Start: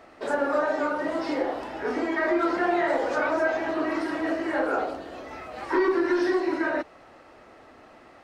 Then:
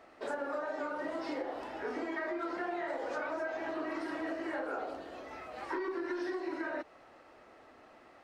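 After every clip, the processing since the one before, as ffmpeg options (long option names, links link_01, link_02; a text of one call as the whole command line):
ffmpeg -i in.wav -af "bass=frequency=250:gain=-4,treble=frequency=4000:gain=-1,acompressor=threshold=-27dB:ratio=6,volume=-6.5dB" out.wav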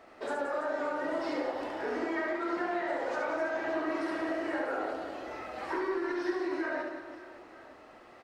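ffmpeg -i in.wav -af "aecho=1:1:70|175|332.5|568.8|923.1:0.631|0.398|0.251|0.158|0.1,volume=2dB" out.wav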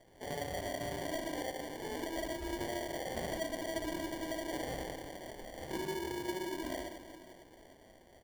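ffmpeg -i in.wav -af "acrusher=samples=34:mix=1:aa=0.000001,volume=-6dB" out.wav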